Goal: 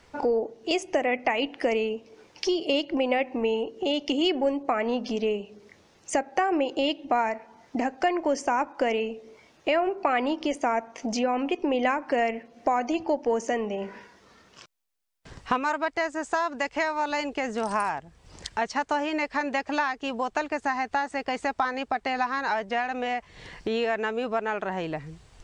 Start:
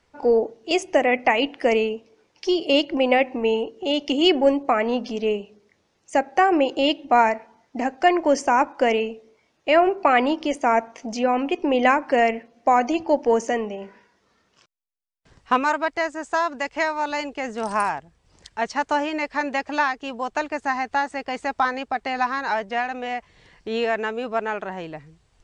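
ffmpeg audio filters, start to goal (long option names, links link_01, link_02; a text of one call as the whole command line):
ffmpeg -i in.wav -af "acompressor=threshold=-39dB:ratio=2.5,volume=9dB" out.wav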